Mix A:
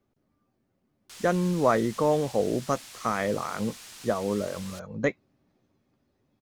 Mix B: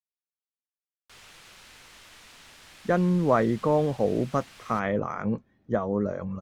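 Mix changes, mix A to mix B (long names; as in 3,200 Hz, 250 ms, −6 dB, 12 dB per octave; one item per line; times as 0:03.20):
speech: entry +1.65 s
master: add bass and treble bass +4 dB, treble −11 dB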